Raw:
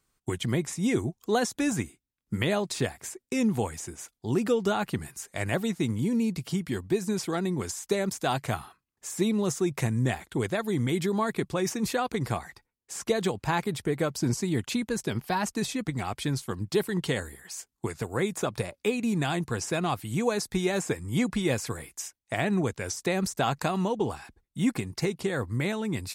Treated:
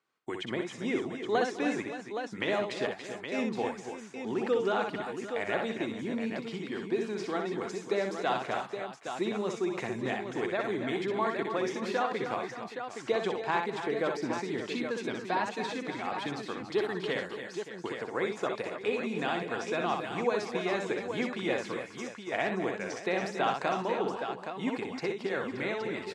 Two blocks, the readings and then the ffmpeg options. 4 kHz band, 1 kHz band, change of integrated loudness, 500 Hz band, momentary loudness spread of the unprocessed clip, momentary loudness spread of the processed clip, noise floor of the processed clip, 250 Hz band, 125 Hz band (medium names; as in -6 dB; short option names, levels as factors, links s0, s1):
-4.0 dB, 0.0 dB, -3.5 dB, -1.0 dB, 8 LU, 7 LU, -46 dBFS, -6.5 dB, -14.0 dB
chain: -af "highpass=340,lowpass=3300,aecho=1:1:62|205|277|293|574|819:0.562|0.106|0.266|0.266|0.2|0.422,volume=0.794"